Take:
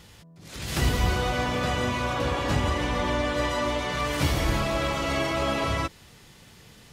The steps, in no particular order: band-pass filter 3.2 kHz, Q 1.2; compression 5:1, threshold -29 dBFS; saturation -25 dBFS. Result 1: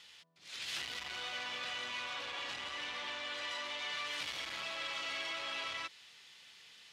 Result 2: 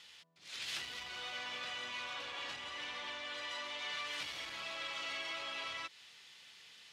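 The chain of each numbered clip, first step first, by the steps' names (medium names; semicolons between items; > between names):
saturation > compression > band-pass filter; compression > saturation > band-pass filter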